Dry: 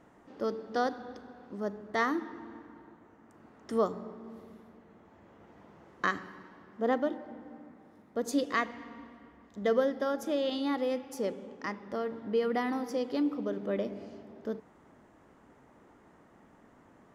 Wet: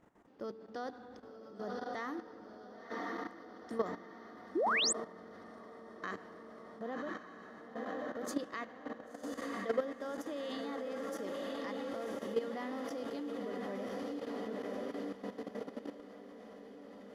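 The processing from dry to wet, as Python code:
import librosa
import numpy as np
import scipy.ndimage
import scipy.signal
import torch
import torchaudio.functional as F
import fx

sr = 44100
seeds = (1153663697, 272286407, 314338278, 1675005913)

y = fx.echo_diffused(x, sr, ms=1064, feedback_pct=69, wet_db=-4)
y = fx.level_steps(y, sr, step_db=12)
y = fx.spec_paint(y, sr, seeds[0], shape='rise', start_s=4.55, length_s=0.38, low_hz=290.0, high_hz=9000.0, level_db=-27.0)
y = F.gain(torch.from_numpy(y), -4.0).numpy()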